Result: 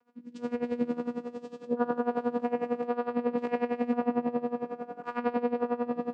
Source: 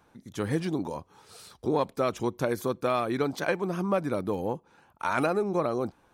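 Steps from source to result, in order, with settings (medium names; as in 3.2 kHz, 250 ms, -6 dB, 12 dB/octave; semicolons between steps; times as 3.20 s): spectral sustain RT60 2.86 s; low-pass that closes with the level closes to 2.3 kHz, closed at -18.5 dBFS; vocoder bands 8, saw 241 Hz; echo whose repeats swap between lows and highs 269 ms, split 1.3 kHz, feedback 79%, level -12 dB; logarithmic tremolo 11 Hz, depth 18 dB; trim -1.5 dB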